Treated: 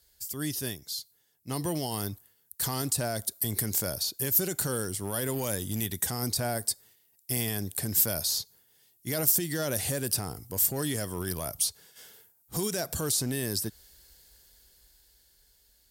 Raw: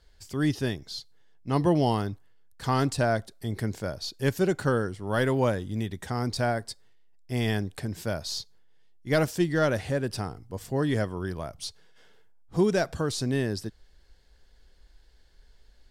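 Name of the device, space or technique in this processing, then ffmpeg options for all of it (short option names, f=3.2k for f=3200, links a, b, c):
FM broadcast chain: -filter_complex "[0:a]highpass=48,dynaudnorm=f=310:g=13:m=12dB,acrossover=split=1100|2300[a][b][c];[a]acompressor=threshold=-19dB:ratio=4[d];[b]acompressor=threshold=-37dB:ratio=4[e];[c]acompressor=threshold=-35dB:ratio=4[f];[d][e][f]amix=inputs=3:normalize=0,aemphasis=mode=production:type=50fm,alimiter=limit=-15dB:level=0:latency=1:release=29,asoftclip=type=hard:threshold=-16.5dB,lowpass=f=15k:w=0.5412,lowpass=f=15k:w=1.3066,aemphasis=mode=production:type=50fm,volume=-7.5dB"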